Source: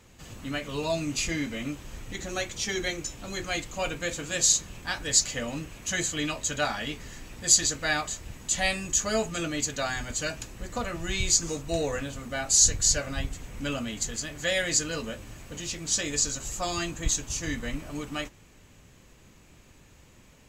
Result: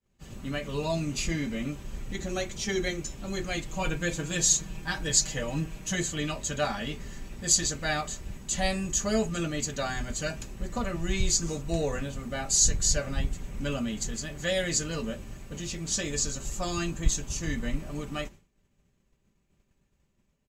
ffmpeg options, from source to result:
ffmpeg -i in.wav -filter_complex "[0:a]asettb=1/sr,asplit=3[link_01][link_02][link_03];[link_01]atrim=end=3.674[link_04];[link_02]atrim=start=3.67:end=5.95,asetpts=PTS-STARTPTS,afade=type=in:duration=0.004:curve=qsin,afade=type=out:start_time=2.276:duration=0.004:curve=qsin,aecho=1:1:6.3:0.61,atrim=end_sample=100548[link_05];[link_03]atrim=start=5.946[link_06];[link_04][link_05]acrossfade=duration=0.004:curve1=hsin:curve2=qsin[link_07];[link_07][link_06]acrossfade=duration=0.004:curve1=qsin:curve2=hsin,agate=range=-33dB:threshold=-42dB:ratio=3:detection=peak,lowshelf=frequency=490:gain=7.5,aecho=1:1:5.1:0.38,volume=-4dB" out.wav

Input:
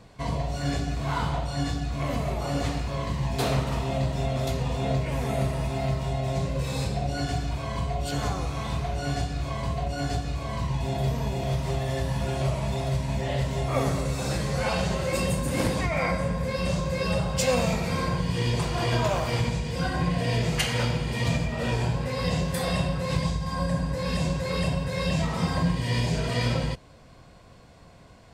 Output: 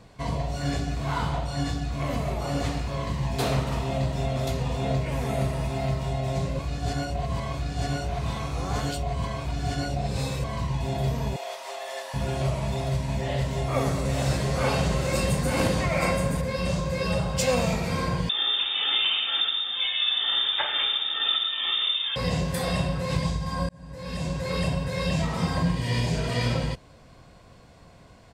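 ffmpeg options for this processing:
ffmpeg -i in.wav -filter_complex "[0:a]asettb=1/sr,asplit=3[link_01][link_02][link_03];[link_01]atrim=end=11.364[link_04];[link_02]atrim=start=11.36:end=12.14,asetpts=PTS-STARTPTS,afade=type=in:duration=0.004:curve=qsin,afade=type=out:start_time=0.776:duration=0.004:curve=qsin,highpass=frequency=570:width=0.5412,highpass=frequency=570:width=1.3066[link_05];[link_03]atrim=start=12.136[link_06];[link_04][link_05]acrossfade=duration=0.004:curve1=hsin:curve2=qsin[link_07];[link_07][link_06]acrossfade=duration=0.004:curve1=qsin:curve2=hsin,asplit=3[link_08][link_09][link_10];[link_08]afade=type=out:start_time=14.03:duration=0.02[link_11];[link_09]aecho=1:1:874:0.708,afade=type=in:start_time=14.03:duration=0.02,afade=type=out:start_time=16.4:duration=0.02[link_12];[link_10]afade=type=in:start_time=16.4:duration=0.02[link_13];[link_11][link_12][link_13]amix=inputs=3:normalize=0,asettb=1/sr,asplit=3[link_14][link_15][link_16];[link_14]atrim=end=18.294[link_17];[link_15]atrim=start=18.29:end=22.16,asetpts=PTS-STARTPTS,afade=type=in:duration=0.004:curve=qsin,afade=type=out:start_time=3.866:duration=0.004:curve=qsin,lowpass=frequency=3100:width_type=q:width=0.5098,lowpass=frequency=3100:width_type=q:width=0.6013,lowpass=frequency=3100:width_type=q:width=0.9,lowpass=frequency=3100:width_type=q:width=2.563,afreqshift=-3700[link_18];[link_16]atrim=start=22.156[link_19];[link_17][link_18]acrossfade=duration=0.004:curve1=hsin:curve2=qsin[link_20];[link_20][link_19]acrossfade=duration=0.004:curve1=qsin:curve2=hsin,asplit=4[link_21][link_22][link_23][link_24];[link_21]atrim=end=6.592[link_25];[link_22]atrim=start=6.588:end=10.442,asetpts=PTS-STARTPTS,areverse[link_26];[link_23]atrim=start=10.438:end=23.69,asetpts=PTS-STARTPTS,afade=type=out:start_time=13.248:duration=0.004:curve=hsin[link_27];[link_24]atrim=start=23.69,asetpts=PTS-STARTPTS,afade=type=in:duration=0.83[link_28];[link_25][link_26]acrossfade=duration=0.004:curve1=hsin:curve2=hsin[link_29];[link_27][link_28]concat=n=2:v=0:a=1[link_30];[link_29][link_30]acrossfade=duration=0.004:curve1=hsin:curve2=hsin" out.wav

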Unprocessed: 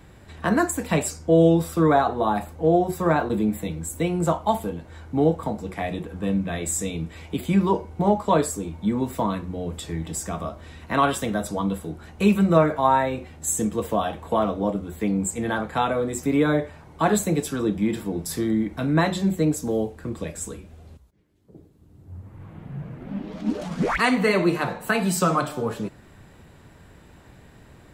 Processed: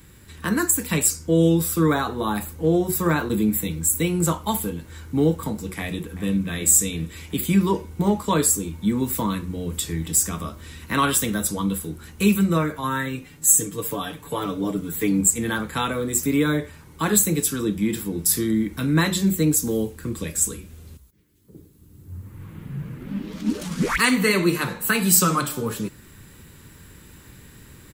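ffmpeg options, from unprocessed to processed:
ffmpeg -i in.wav -filter_complex "[0:a]asplit=2[link_01][link_02];[link_02]afade=type=in:start_time=5.78:duration=0.01,afade=type=out:start_time=6.3:duration=0.01,aecho=0:1:380|760|1140|1520|1900|2280|2660|3040:0.16788|0.117516|0.0822614|0.057583|0.0403081|0.0282157|0.019751|0.0138257[link_03];[link_01][link_03]amix=inputs=2:normalize=0,asettb=1/sr,asplit=3[link_04][link_05][link_06];[link_04]atrim=end=12.834[link_07];[link_05]atrim=start=12.83:end=15.21,asetpts=PTS-STARTPTS,afade=type=in:duration=0.004:curve=qsin,afade=type=out:start_time=2.376:duration=0.004:curve=qsin,aecho=1:1:6.9:0.98,atrim=end_sample=104958[link_08];[link_06]atrim=start=15.206[link_09];[link_07][link_08]acrossfade=duration=0.004:curve1=hsin:curve2=qsin[link_10];[link_10][link_09]acrossfade=duration=0.004:curve1=qsin:curve2=hsin,aemphasis=mode=production:type=50fm,dynaudnorm=framelen=120:gausssize=17:maxgain=3.5dB,equalizer=frequency=690:width=2.2:gain=-14" out.wav

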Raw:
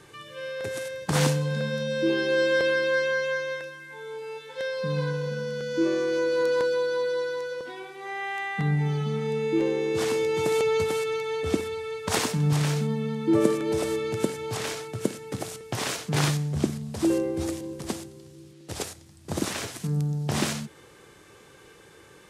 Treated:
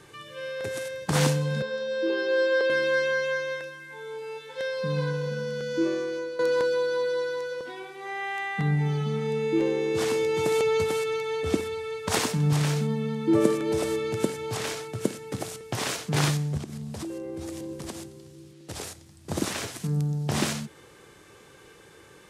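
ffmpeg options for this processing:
ffmpeg -i in.wav -filter_complex "[0:a]asettb=1/sr,asplit=3[link_01][link_02][link_03];[link_01]atrim=end=1.624[link_04];[link_02]atrim=start=1.62:end=2.7,asetpts=PTS-STARTPTS,afade=type=in:duration=0.004:curve=qsin,afade=type=out:start_time=1.076:duration=0.004:curve=qsin,highpass=frequency=300:width=0.5412,highpass=frequency=300:width=1.3066,equalizer=frequency=310:width_type=q:width=4:gain=-5,equalizer=frequency=450:width_type=q:width=4:gain=5,equalizer=frequency=650:width_type=q:width=4:gain=-6,equalizer=frequency=2300:width_type=q:width=4:gain=-10,equalizer=frequency=3400:width_type=q:width=4:gain=-4,equalizer=frequency=6100:width_type=q:width=4:gain=-8,lowpass=frequency=6900:width=0.5412,lowpass=frequency=6900:width=1.3066[link_05];[link_03]atrim=start=2.696[link_06];[link_04][link_05]acrossfade=duration=0.004:curve1=hsin:curve2=qsin[link_07];[link_07][link_06]acrossfade=duration=0.004:curve1=qsin:curve2=hsin,asettb=1/sr,asplit=3[link_08][link_09][link_10];[link_08]atrim=end=16.574[link_11];[link_09]atrim=start=16.57:end=18.83,asetpts=PTS-STARTPTS,afade=type=in:duration=0.004:curve=qsin,afade=type=out:start_time=2.256:duration=0.004:curve=qsin,acompressor=threshold=-31dB:ratio=16:attack=3.2:release=140:knee=1:detection=peak[link_12];[link_10]atrim=start=18.826[link_13];[link_11][link_12]acrossfade=duration=0.004:curve1=hsin:curve2=qsin[link_14];[link_14][link_13]acrossfade=duration=0.004:curve1=qsin:curve2=hsin,asplit=2[link_15][link_16];[link_15]atrim=end=6.39,asetpts=PTS-STARTPTS,afade=type=out:start_time=5.71:duration=0.68:silence=0.237137[link_17];[link_16]atrim=start=6.39,asetpts=PTS-STARTPTS,afade=type=in:duration=0.004:curve=hsin:silence=0.237137[link_18];[link_17][link_18]concat=n=2:v=0:a=1" out.wav

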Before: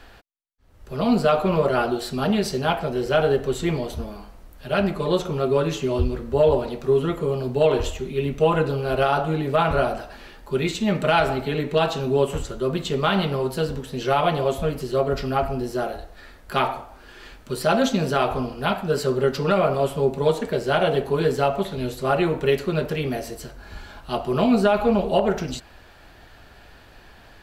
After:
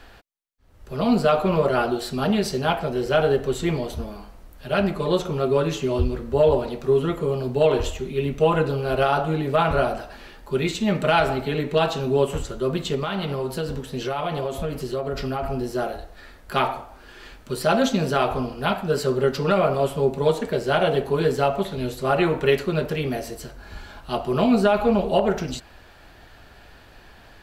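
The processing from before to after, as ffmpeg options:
ffmpeg -i in.wav -filter_complex "[0:a]asettb=1/sr,asplit=3[link_01][link_02][link_03];[link_01]atrim=end=12.954[link_04];[link_02]atrim=start=12.95:end=15.44,asetpts=PTS-STARTPTS,afade=type=in:duration=0.004:curve=qsin,afade=type=out:start_time=2.486:duration=0.004:curve=qsin,acompressor=threshold=-22dB:ratio=6:attack=3.2:release=140:knee=1:detection=peak[link_05];[link_03]atrim=start=15.436[link_06];[link_04][link_05]acrossfade=duration=0.004:curve1=hsin:curve2=qsin[link_07];[link_07][link_06]acrossfade=duration=0.004:curve1=qsin:curve2=hsin,asettb=1/sr,asplit=3[link_08][link_09][link_10];[link_08]atrim=end=22.184[link_11];[link_09]atrim=start=22.18:end=22.63,asetpts=PTS-STARTPTS,afade=type=in:duration=0.004:curve=qsin,afade=type=out:start_time=0.446:duration=0.004:curve=qsin,equalizer=frequency=1500:width=0.56:gain=4[link_12];[link_10]atrim=start=22.626[link_13];[link_11][link_12]acrossfade=duration=0.004:curve1=hsin:curve2=qsin[link_14];[link_14][link_13]acrossfade=duration=0.004:curve1=qsin:curve2=hsin" out.wav

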